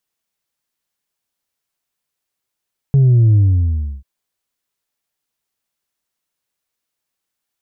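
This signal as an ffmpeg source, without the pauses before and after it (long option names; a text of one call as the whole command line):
ffmpeg -f lavfi -i "aevalsrc='0.398*clip((1.09-t)/0.67,0,1)*tanh(1.26*sin(2*PI*140*1.09/log(65/140)*(exp(log(65/140)*t/1.09)-1)))/tanh(1.26)':duration=1.09:sample_rate=44100" out.wav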